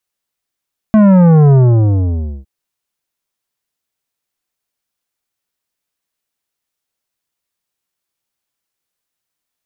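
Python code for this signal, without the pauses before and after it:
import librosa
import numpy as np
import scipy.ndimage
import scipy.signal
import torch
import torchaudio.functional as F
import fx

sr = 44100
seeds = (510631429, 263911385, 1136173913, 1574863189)

y = fx.sub_drop(sr, level_db=-5.5, start_hz=220.0, length_s=1.51, drive_db=11.5, fade_s=0.93, end_hz=65.0)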